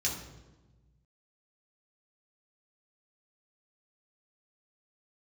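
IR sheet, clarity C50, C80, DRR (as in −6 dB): 5.0 dB, 8.0 dB, −4.0 dB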